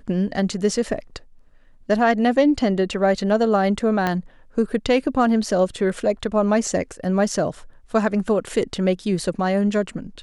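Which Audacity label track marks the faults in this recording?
4.070000	4.070000	pop -9 dBFS

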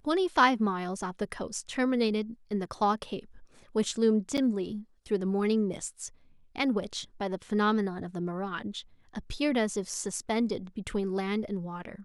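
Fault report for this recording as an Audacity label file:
4.370000	4.380000	dropout 7.6 ms

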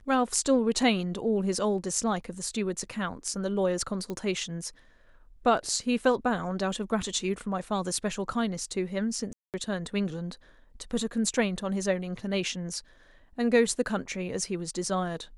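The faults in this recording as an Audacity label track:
4.100000	4.100000	pop -22 dBFS
9.330000	9.540000	dropout 208 ms

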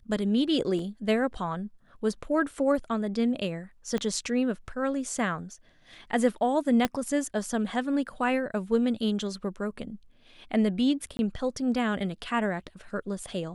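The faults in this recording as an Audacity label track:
0.790000	0.790000	dropout 2.3 ms
3.980000	3.980000	pop -18 dBFS
6.850000	6.850000	pop -10 dBFS
11.170000	11.190000	dropout 21 ms

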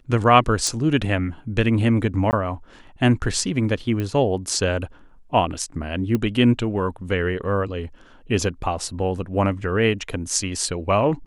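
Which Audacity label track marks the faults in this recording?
0.670000	0.670000	pop
2.310000	2.330000	dropout 19 ms
4.000000	4.000000	pop -15 dBFS
6.150000	6.150000	pop -11 dBFS

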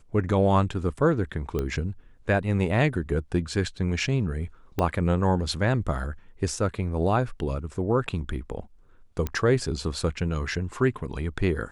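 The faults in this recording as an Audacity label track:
1.590000	1.590000	pop -16 dBFS
4.790000	4.790000	pop -13 dBFS
9.270000	9.270000	pop -15 dBFS

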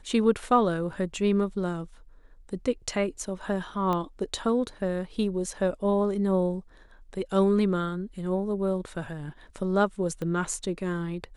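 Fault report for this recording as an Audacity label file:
3.930000	3.930000	pop -17 dBFS
10.220000	10.220000	pop -22 dBFS

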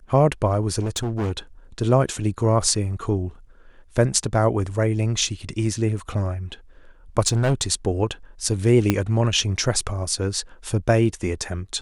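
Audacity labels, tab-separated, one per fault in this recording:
0.800000	1.320000	clipped -21 dBFS
5.990000	5.990000	dropout 2.5 ms
7.270000	7.720000	clipped -15 dBFS
8.900000	8.900000	pop -4 dBFS

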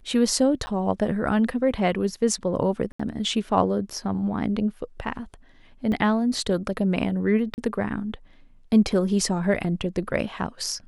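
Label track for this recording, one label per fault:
0.660000	0.670000	dropout 10 ms
2.920000	3.000000	dropout 75 ms
5.920000	5.920000	dropout 2.9 ms
7.540000	7.580000	dropout 39 ms

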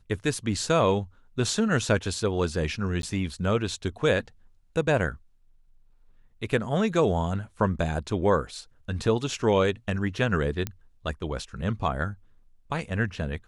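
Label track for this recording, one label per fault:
3.020000	3.030000	dropout 12 ms
10.670000	10.670000	pop -15 dBFS

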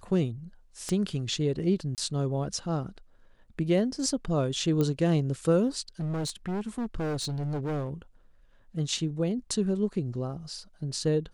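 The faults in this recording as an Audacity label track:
0.890000	0.890000	pop -19 dBFS
1.950000	1.980000	dropout 28 ms
4.810000	4.810000	pop -16 dBFS
6.000000	7.910000	clipped -28 dBFS

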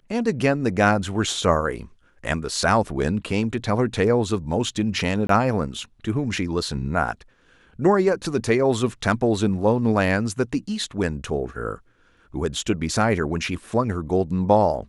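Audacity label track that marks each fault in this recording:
5.270000	5.290000	dropout 23 ms

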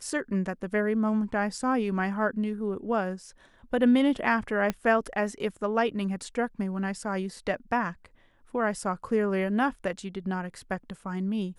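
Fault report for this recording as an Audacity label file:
4.700000	4.700000	pop -14 dBFS

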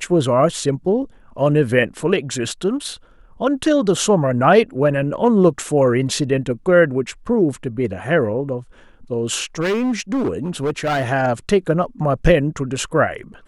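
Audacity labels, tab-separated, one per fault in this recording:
9.600000	11.110000	clipped -16 dBFS

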